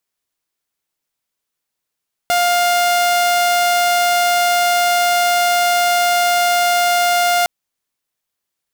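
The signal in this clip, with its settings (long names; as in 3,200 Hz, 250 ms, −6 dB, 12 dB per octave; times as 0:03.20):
tone saw 704 Hz −10 dBFS 5.16 s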